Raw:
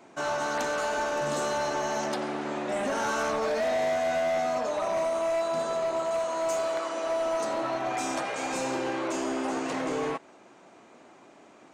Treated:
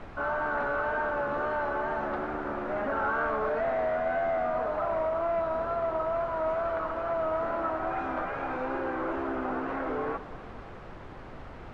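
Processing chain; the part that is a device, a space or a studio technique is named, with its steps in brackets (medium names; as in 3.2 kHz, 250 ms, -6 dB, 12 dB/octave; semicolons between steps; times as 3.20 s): horn gramophone (band-pass 210–3400 Hz; peaking EQ 1.4 kHz +8.5 dB 0.49 oct; wow and flutter; pink noise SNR 12 dB); low-pass 1.6 kHz 12 dB/octave; tape echo 115 ms, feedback 89%, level -16 dB, low-pass 3.9 kHz; trim -2 dB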